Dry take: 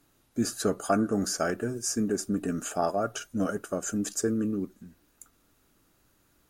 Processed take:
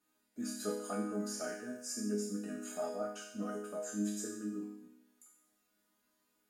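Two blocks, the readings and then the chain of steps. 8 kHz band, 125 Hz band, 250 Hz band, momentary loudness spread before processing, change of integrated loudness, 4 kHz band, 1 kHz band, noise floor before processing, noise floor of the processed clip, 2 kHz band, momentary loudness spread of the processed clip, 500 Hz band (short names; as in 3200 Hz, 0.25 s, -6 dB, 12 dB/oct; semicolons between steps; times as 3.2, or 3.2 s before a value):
-10.0 dB, -12.5 dB, -9.5 dB, 5 LU, -10.0 dB, -10.0 dB, -13.5 dB, -68 dBFS, -78 dBFS, -10.5 dB, 6 LU, -10.0 dB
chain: HPF 200 Hz 6 dB/oct; notch 6100 Hz, Q 17; resonator bank G#3 minor, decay 0.8 s; gain +13 dB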